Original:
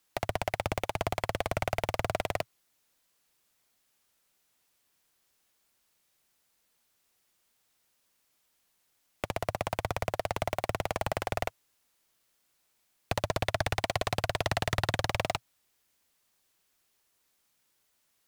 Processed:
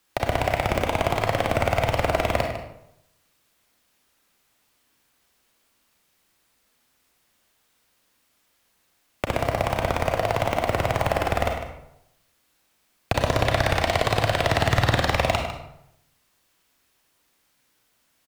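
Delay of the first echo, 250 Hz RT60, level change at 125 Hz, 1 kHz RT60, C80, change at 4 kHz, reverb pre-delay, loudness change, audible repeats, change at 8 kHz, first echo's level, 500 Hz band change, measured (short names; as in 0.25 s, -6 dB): 0.152 s, 0.85 s, +10.0 dB, 0.75 s, 6.5 dB, +7.5 dB, 31 ms, +9.0 dB, 1, +5.0 dB, -11.0 dB, +9.5 dB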